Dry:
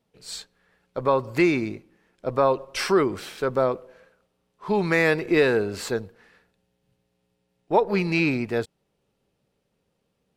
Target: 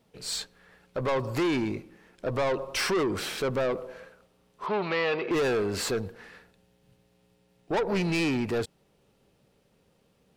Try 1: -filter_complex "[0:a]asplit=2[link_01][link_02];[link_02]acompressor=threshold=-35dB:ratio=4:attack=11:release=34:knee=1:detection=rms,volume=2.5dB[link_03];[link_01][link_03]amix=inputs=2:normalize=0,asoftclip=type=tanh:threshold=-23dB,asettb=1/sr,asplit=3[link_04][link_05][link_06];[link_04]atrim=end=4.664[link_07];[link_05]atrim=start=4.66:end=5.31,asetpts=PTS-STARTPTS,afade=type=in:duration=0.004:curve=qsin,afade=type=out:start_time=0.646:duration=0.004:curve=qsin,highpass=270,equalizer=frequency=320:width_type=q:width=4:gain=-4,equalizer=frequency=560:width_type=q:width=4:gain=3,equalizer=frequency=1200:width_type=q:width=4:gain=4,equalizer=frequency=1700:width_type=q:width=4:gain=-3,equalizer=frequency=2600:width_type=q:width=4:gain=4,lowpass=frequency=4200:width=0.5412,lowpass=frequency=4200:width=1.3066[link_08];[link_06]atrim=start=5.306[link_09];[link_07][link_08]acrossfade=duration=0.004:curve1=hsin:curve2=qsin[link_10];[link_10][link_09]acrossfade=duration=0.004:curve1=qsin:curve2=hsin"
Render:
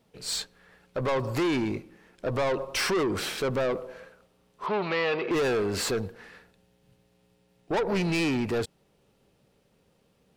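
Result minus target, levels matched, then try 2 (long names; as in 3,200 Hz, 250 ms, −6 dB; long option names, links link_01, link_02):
downward compressor: peak gain reduction −5 dB
-filter_complex "[0:a]asplit=2[link_01][link_02];[link_02]acompressor=threshold=-41.5dB:ratio=4:attack=11:release=34:knee=1:detection=rms,volume=2.5dB[link_03];[link_01][link_03]amix=inputs=2:normalize=0,asoftclip=type=tanh:threshold=-23dB,asettb=1/sr,asplit=3[link_04][link_05][link_06];[link_04]atrim=end=4.664[link_07];[link_05]atrim=start=4.66:end=5.31,asetpts=PTS-STARTPTS,afade=type=in:duration=0.004:curve=qsin,afade=type=out:start_time=0.646:duration=0.004:curve=qsin,highpass=270,equalizer=frequency=320:width_type=q:width=4:gain=-4,equalizer=frequency=560:width_type=q:width=4:gain=3,equalizer=frequency=1200:width_type=q:width=4:gain=4,equalizer=frequency=1700:width_type=q:width=4:gain=-3,equalizer=frequency=2600:width_type=q:width=4:gain=4,lowpass=frequency=4200:width=0.5412,lowpass=frequency=4200:width=1.3066[link_08];[link_06]atrim=start=5.306[link_09];[link_07][link_08]acrossfade=duration=0.004:curve1=hsin:curve2=qsin[link_10];[link_10][link_09]acrossfade=duration=0.004:curve1=qsin:curve2=hsin"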